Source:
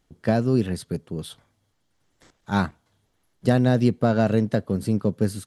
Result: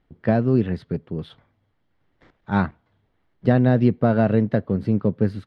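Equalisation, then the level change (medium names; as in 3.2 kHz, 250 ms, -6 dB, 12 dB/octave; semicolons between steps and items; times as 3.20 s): distance through air 340 m; peaking EQ 2 kHz +3 dB 0.4 oct; +2.5 dB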